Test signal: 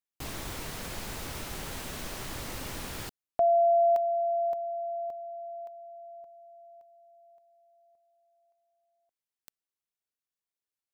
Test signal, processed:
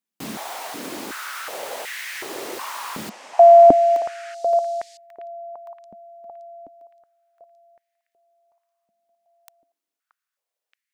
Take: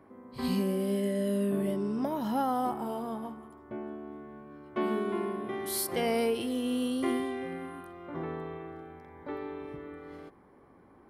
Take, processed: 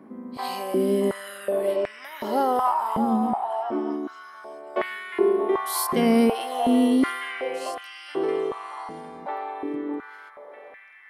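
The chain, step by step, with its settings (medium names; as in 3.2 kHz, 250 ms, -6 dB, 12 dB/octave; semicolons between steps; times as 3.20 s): repeats whose band climbs or falls 626 ms, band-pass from 830 Hz, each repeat 1.4 oct, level -2 dB; step-sequenced high-pass 2.7 Hz 210–1900 Hz; trim +4.5 dB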